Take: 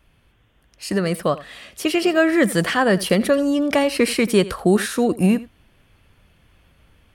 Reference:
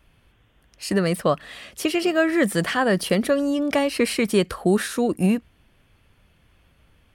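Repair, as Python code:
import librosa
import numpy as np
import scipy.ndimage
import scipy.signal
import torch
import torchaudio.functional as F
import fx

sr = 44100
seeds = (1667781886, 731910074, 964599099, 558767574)

y = fx.fix_echo_inverse(x, sr, delay_ms=84, level_db=-18.0)
y = fx.fix_level(y, sr, at_s=1.86, step_db=-3.0)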